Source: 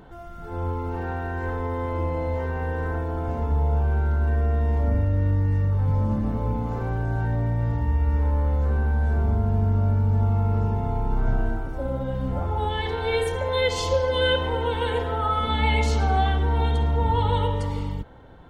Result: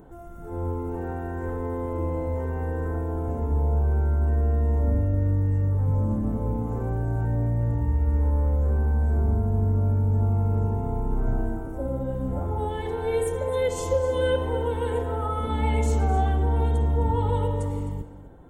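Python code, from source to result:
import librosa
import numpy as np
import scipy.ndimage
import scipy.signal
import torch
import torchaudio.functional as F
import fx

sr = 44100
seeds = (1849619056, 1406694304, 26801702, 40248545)

p1 = fx.curve_eq(x, sr, hz=(210.0, 310.0, 4700.0, 7600.0), db=(0, 4, -14, 5))
p2 = p1 + fx.echo_single(p1, sr, ms=260, db=-14.5, dry=0)
y = F.gain(torch.from_numpy(p2), -1.5).numpy()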